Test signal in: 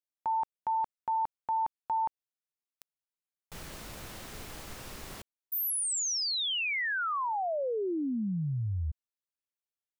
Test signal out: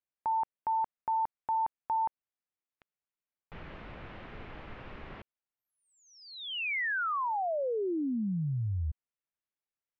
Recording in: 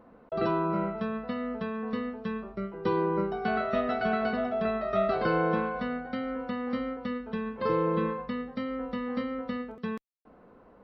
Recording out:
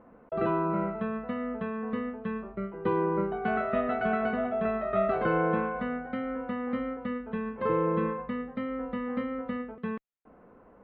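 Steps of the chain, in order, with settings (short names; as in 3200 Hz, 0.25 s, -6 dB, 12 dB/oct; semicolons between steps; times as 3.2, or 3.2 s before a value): LPF 2700 Hz 24 dB/oct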